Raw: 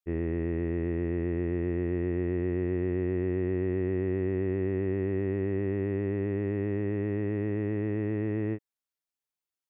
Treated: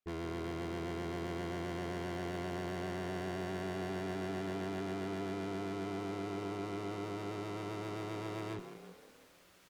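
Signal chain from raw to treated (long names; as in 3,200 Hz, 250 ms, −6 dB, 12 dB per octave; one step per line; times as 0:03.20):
phase distortion by the signal itself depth 0.95 ms
low-pass filter 2,000 Hz 6 dB per octave
notch filter 860 Hz, Q 5.1
reversed playback
upward compression, threshold −46 dBFS
reversed playback
tube saturation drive 47 dB, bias 0.55
echo with shifted repeats 168 ms, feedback 59%, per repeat +37 Hz, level −11 dB
on a send at −21 dB: convolution reverb RT60 0.15 s, pre-delay 3 ms
on the sum: level +8 dB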